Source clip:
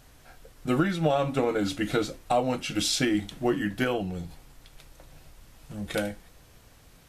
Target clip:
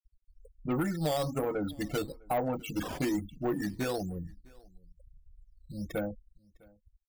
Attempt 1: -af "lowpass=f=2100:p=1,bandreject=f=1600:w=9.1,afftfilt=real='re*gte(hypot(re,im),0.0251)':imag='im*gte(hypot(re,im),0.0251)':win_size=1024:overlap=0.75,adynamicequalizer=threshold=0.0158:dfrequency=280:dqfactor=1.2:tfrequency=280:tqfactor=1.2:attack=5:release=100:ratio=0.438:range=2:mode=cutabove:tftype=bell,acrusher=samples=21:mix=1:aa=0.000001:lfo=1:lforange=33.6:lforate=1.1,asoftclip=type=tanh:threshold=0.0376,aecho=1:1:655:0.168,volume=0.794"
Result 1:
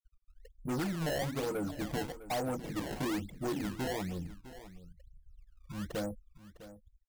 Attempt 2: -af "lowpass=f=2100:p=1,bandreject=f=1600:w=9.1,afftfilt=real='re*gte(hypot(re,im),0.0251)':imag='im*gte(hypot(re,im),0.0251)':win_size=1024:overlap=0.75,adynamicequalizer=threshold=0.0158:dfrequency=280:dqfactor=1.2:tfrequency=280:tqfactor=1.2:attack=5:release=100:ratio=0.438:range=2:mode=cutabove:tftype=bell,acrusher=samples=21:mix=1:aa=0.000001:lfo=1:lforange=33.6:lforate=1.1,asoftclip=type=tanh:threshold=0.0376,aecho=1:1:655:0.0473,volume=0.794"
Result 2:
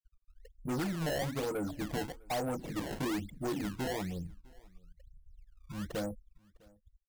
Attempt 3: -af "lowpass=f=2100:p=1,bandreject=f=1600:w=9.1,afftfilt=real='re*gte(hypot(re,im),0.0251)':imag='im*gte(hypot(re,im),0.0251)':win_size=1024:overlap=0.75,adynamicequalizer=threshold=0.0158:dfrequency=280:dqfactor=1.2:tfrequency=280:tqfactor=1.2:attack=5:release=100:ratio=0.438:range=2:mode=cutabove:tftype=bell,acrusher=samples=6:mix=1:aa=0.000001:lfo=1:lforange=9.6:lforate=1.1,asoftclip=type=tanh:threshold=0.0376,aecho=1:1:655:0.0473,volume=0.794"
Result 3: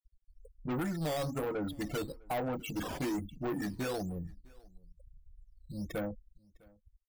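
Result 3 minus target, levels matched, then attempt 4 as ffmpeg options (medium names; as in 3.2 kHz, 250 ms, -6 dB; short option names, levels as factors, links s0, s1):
saturation: distortion +6 dB
-af "lowpass=f=2100:p=1,bandreject=f=1600:w=9.1,afftfilt=real='re*gte(hypot(re,im),0.0251)':imag='im*gte(hypot(re,im),0.0251)':win_size=1024:overlap=0.75,adynamicequalizer=threshold=0.0158:dfrequency=280:dqfactor=1.2:tfrequency=280:tqfactor=1.2:attack=5:release=100:ratio=0.438:range=2:mode=cutabove:tftype=bell,acrusher=samples=6:mix=1:aa=0.000001:lfo=1:lforange=9.6:lforate=1.1,asoftclip=type=tanh:threshold=0.0841,aecho=1:1:655:0.0473,volume=0.794"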